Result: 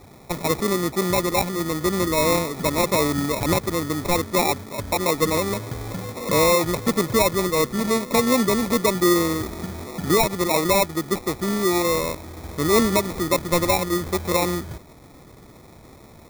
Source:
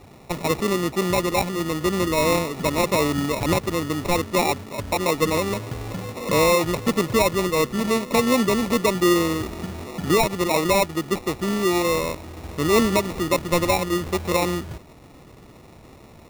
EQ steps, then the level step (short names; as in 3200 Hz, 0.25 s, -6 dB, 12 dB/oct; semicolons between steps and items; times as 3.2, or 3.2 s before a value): Butterworth band-stop 2800 Hz, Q 6.1; high shelf 8000 Hz +6 dB; 0.0 dB